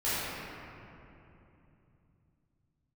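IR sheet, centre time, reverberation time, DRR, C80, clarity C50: 200 ms, 3.0 s, −14.0 dB, −3.0 dB, −5.5 dB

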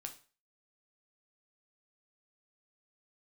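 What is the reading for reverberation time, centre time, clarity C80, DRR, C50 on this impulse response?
0.35 s, 10 ms, 18.0 dB, 4.0 dB, 12.5 dB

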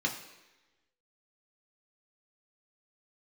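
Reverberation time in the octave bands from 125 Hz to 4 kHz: 0.85, 1.0, 1.1, 1.1, 1.2, 1.1 seconds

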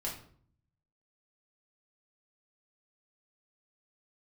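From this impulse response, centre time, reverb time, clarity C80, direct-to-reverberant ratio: 28 ms, 0.55 s, 11.0 dB, −4.5 dB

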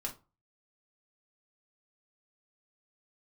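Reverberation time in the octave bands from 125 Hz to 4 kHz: 0.45, 0.30, 0.30, 0.30, 0.20, 0.20 seconds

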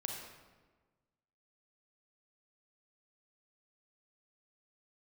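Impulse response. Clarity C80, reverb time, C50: 4.0 dB, 1.4 s, 2.0 dB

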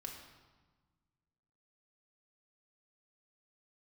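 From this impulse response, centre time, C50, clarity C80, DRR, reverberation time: 43 ms, 4.5 dB, 6.5 dB, 0.0 dB, 1.3 s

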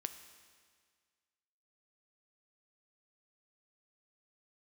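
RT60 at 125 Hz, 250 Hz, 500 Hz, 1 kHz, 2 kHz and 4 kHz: 1.8, 1.8, 1.8, 1.8, 1.8, 1.7 seconds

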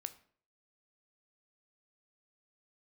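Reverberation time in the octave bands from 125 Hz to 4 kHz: 0.55, 0.50, 0.55, 0.50, 0.45, 0.40 seconds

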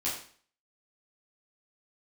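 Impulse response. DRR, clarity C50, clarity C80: −8.5 dB, 5.0 dB, 8.5 dB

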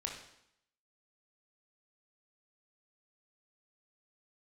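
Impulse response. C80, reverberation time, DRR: 8.0 dB, 0.75 s, 0.5 dB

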